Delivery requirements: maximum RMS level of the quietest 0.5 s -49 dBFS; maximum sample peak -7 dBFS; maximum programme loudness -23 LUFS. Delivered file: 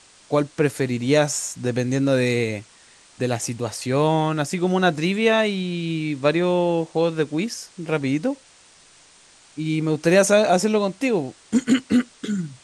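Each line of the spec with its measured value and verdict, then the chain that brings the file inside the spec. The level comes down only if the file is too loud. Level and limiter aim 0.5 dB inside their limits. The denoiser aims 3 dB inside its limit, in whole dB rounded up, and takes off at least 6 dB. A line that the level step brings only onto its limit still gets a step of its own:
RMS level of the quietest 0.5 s -52 dBFS: pass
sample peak -5.5 dBFS: fail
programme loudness -21.5 LUFS: fail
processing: trim -2 dB

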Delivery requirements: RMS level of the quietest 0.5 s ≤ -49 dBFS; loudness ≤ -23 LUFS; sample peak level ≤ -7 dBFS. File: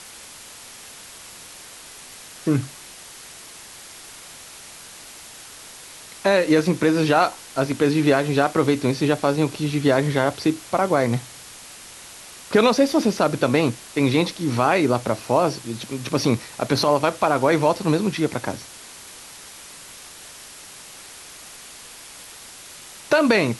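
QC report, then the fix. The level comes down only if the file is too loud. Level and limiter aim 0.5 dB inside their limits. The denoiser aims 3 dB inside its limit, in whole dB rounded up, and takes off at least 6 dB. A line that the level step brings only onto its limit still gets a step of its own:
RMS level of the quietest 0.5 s -42 dBFS: fail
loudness -20.5 LUFS: fail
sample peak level -5.0 dBFS: fail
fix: noise reduction 7 dB, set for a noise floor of -42 dBFS; trim -3 dB

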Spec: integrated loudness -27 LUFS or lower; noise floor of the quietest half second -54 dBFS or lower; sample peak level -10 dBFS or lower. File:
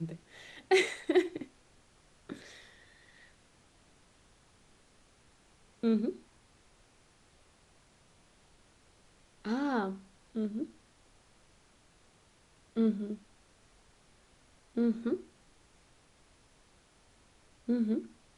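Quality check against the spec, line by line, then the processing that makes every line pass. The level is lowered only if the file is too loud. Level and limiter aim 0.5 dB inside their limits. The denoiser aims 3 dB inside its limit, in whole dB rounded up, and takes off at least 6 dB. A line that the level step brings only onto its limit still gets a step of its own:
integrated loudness -33.5 LUFS: pass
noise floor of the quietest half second -64 dBFS: pass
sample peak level -15.5 dBFS: pass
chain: none needed

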